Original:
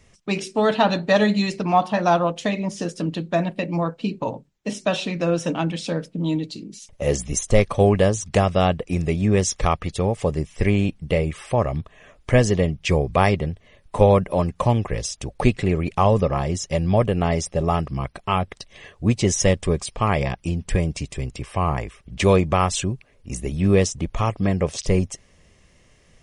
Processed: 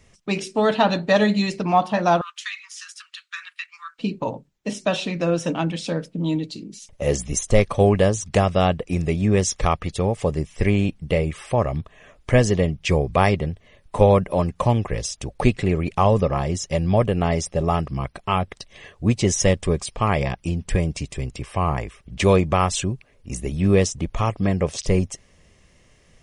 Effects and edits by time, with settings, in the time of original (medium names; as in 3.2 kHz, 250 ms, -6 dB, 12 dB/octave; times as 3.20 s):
2.21–3.99 s: steep high-pass 1.2 kHz 72 dB/octave